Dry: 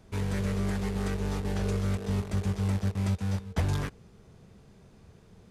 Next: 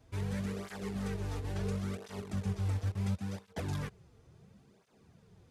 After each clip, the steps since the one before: tape flanging out of phase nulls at 0.72 Hz, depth 5.6 ms; gain -3.5 dB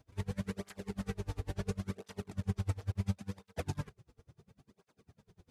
dB-linear tremolo 10 Hz, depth 31 dB; gain +4 dB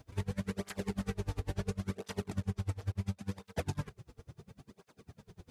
compressor 6:1, threshold -40 dBFS, peak gain reduction 13 dB; gain +8.5 dB

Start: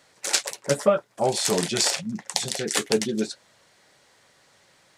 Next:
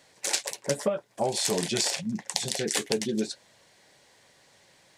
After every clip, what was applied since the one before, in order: bell 1300 Hz -8 dB 0.32 oct; compressor 6:1, threshold -23 dBFS, peak gain reduction 9.5 dB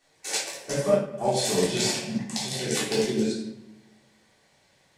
shoebox room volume 410 m³, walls mixed, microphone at 3.5 m; upward expander 1.5:1, over -29 dBFS; gain -4 dB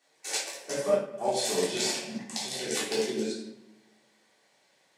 HPF 270 Hz 12 dB/oct; gain -3 dB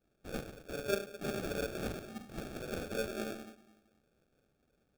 sample-rate reducer 1000 Hz, jitter 0%; gain -8.5 dB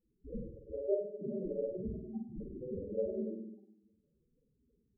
loudest bins only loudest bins 4; on a send: flutter echo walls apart 8.5 m, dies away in 0.55 s; on the sum: gain +4 dB

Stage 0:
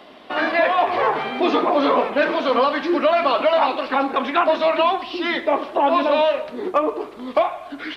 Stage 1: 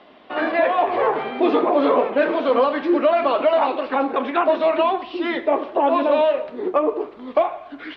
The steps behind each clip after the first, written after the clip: LPF 3500 Hz 12 dB/oct; dynamic EQ 420 Hz, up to +7 dB, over -32 dBFS, Q 0.88; gain -4 dB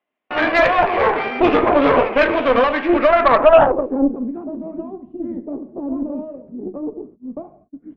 gate -35 dBFS, range -36 dB; low-pass sweep 2400 Hz -> 210 Hz, 3–4.2; added harmonics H 4 -15 dB, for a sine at -3.5 dBFS; gain +2 dB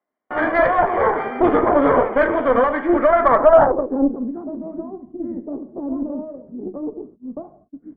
polynomial smoothing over 41 samples; gain -1 dB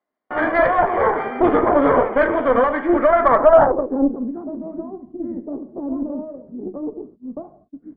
downsampling 11025 Hz

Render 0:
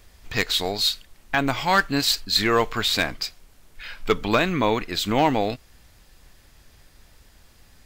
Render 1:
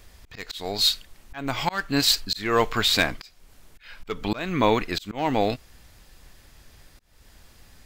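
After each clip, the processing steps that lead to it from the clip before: auto swell 0.312 s; gain +1.5 dB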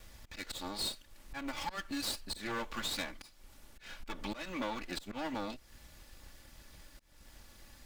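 minimum comb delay 3.5 ms; compressor 3:1, threshold -36 dBFS, peak gain reduction 14.5 dB; gain -2.5 dB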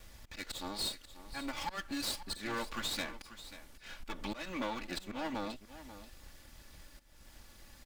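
echo 0.538 s -14 dB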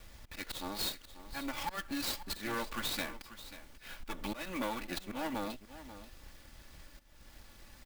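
clock jitter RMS 0.024 ms; gain +1 dB

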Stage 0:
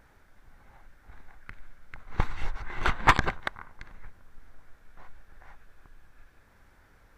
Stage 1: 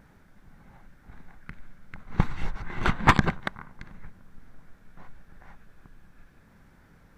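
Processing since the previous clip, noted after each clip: bell 180 Hz +12.5 dB 1.3 oct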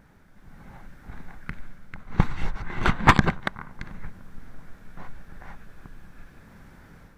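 AGC gain up to 7.5 dB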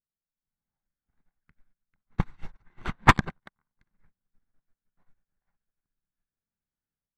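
upward expander 2.5:1, over -41 dBFS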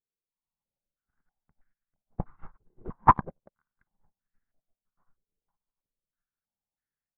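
stepped low-pass 3.1 Hz 450–1800 Hz; gain -7 dB

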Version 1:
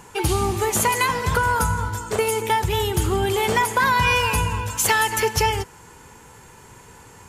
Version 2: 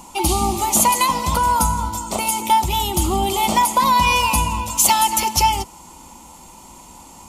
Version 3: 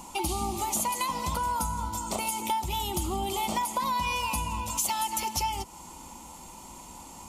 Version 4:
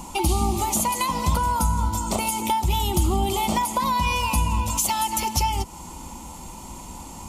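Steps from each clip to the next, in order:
fixed phaser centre 440 Hz, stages 6; gain +7 dB
compressor 3:1, threshold -26 dBFS, peak gain reduction 11.5 dB; gain -3.5 dB
low shelf 220 Hz +8.5 dB; gain +5 dB

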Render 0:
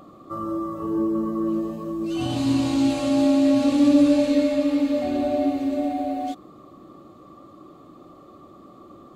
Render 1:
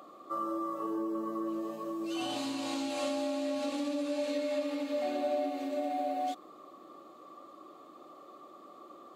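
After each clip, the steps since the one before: compressor 5:1, threshold -23 dBFS, peak gain reduction 10.5 dB; HPF 450 Hz 12 dB/oct; gain -2 dB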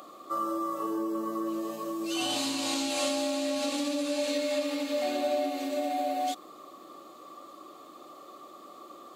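high shelf 2800 Hz +10.5 dB; gain +2.5 dB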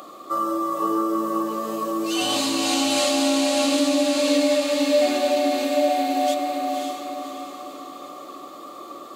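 diffused feedback echo 0.557 s, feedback 46%, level -3 dB; gain +7 dB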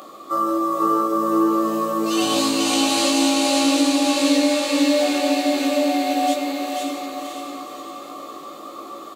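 doubler 18 ms -4.5 dB; echo 0.489 s -4 dB

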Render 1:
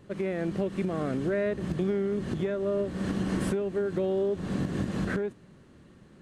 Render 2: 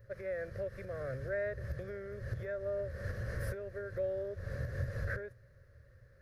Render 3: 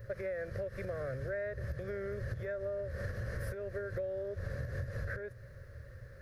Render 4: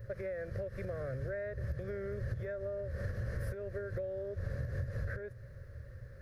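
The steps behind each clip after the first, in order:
EQ curve 120 Hz 0 dB, 170 Hz -25 dB, 320 Hz -28 dB, 550 Hz -1 dB, 830 Hz -25 dB, 1700 Hz -2 dB, 3000 Hz -24 dB, 5200 Hz -9 dB, 8000 Hz -22 dB, 13000 Hz +1 dB; gain +1.5 dB
compressor 6:1, threshold -46 dBFS, peak gain reduction 14.5 dB; gain +10 dB
low shelf 420 Hz +5.5 dB; gain -3.5 dB

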